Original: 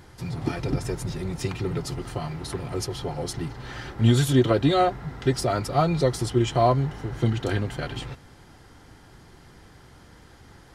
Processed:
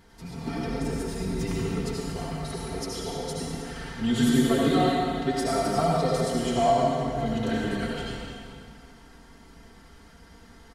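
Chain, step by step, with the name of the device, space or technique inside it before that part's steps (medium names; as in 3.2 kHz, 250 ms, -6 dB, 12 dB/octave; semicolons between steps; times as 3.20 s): comb 4.4 ms, depth 78%; 1.20–1.62 s: bass shelf 430 Hz +7.5 dB; stairwell (reverberation RT60 2.2 s, pre-delay 68 ms, DRR -4 dB); trim -8 dB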